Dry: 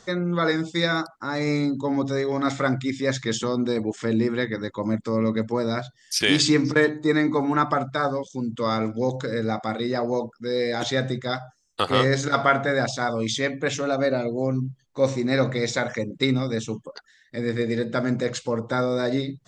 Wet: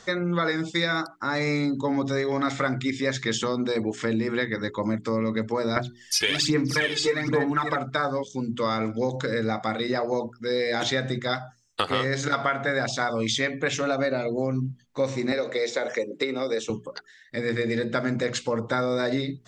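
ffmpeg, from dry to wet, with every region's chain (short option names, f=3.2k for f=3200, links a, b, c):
-filter_complex "[0:a]asettb=1/sr,asplit=3[a][b][c];[a]atrim=end=5.764[d];[b]atrim=start=5.76:end=7.76,asetpts=PTS-STARTPTS,afade=t=in:d=0.004:c=qsin,afade=t=out:st=1.996:d=0.004:c=qsin,aecho=1:1:572:0.501,atrim=end_sample=88200,aphaser=in_gain=1:out_gain=1:delay=2.4:decay=0.64:speed=1.2:type=sinusoidal[e];[c]atrim=start=7.756[f];[d][e]acrossfade=d=0.004:c1=hsin:c2=qsin[g];[g][f]acrossfade=d=0.004:c1=qsin:c2=hsin,asettb=1/sr,asplit=3[h][i][j];[h]atrim=end=15.324[k];[i]atrim=start=15.32:end=16.7,asetpts=PTS-STARTPTS,afade=t=in:d=0.004:c=qsin,afade=t=out:st=1.376:d=0.004:c=qsin,highpass=310,equalizer=f=460:w=1.2:g=10,acrossover=split=570|2800[l][m][n];[l]acompressor=threshold=-28dB:ratio=4[o];[m]acompressor=threshold=-33dB:ratio=4[p];[n]acompressor=threshold=-37dB:ratio=4[q];[o][p][q]amix=inputs=3:normalize=0[r];[j]atrim=start=16.696[s];[k][r]acrossfade=d=0.004:c1=hsin:c2=qsin[t];[t][s]acrossfade=d=0.004:c1=qsin:c2=hsin,equalizer=f=2.2k:w=0.81:g=4.5,bandreject=f=60:t=h:w=6,bandreject=f=120:t=h:w=6,bandreject=f=180:t=h:w=6,bandreject=f=240:t=h:w=6,bandreject=f=300:t=h:w=6,bandreject=f=360:t=h:w=6,bandreject=f=420:t=h:w=6,acompressor=threshold=-22dB:ratio=6,volume=1dB"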